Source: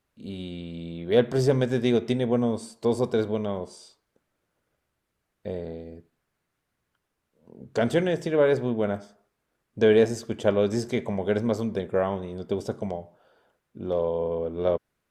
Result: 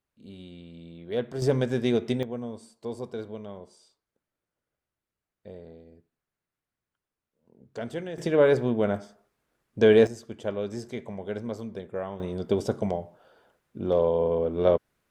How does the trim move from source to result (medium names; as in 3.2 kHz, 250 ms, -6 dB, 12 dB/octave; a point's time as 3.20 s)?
-9 dB
from 1.42 s -2 dB
from 2.23 s -11 dB
from 8.18 s +1 dB
from 10.07 s -8.5 dB
from 12.20 s +3 dB